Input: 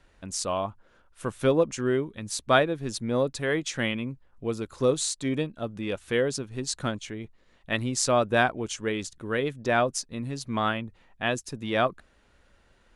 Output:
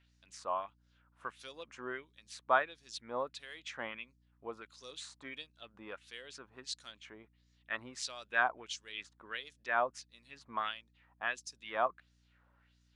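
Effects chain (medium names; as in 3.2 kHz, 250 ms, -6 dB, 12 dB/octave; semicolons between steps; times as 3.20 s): LFO band-pass sine 1.5 Hz 930–5800 Hz; hum 60 Hz, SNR 30 dB; trim -1.5 dB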